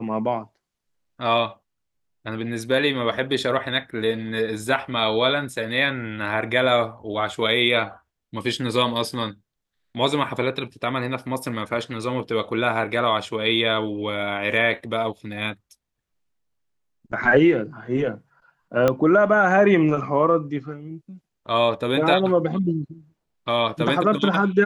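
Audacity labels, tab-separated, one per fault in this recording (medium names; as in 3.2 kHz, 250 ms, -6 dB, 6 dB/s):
18.880000	18.880000	pop -7 dBFS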